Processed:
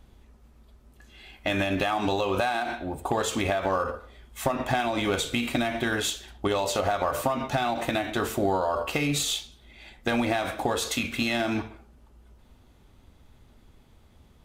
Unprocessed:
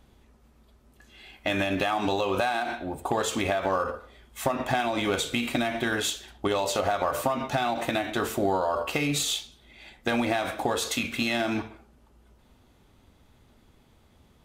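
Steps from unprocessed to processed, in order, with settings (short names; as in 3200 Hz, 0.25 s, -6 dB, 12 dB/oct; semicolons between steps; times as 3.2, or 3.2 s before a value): low shelf 72 Hz +8.5 dB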